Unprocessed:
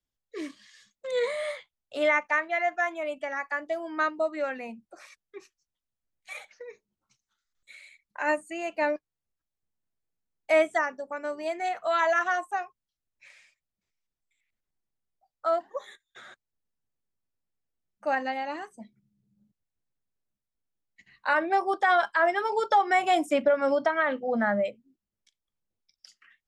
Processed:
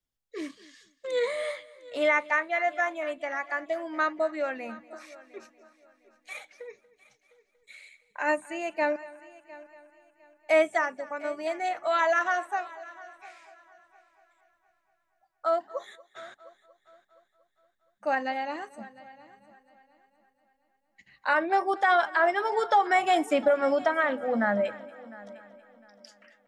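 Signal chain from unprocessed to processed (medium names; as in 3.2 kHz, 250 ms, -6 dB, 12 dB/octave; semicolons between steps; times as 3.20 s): multi-head delay 235 ms, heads first and third, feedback 43%, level -20.5 dB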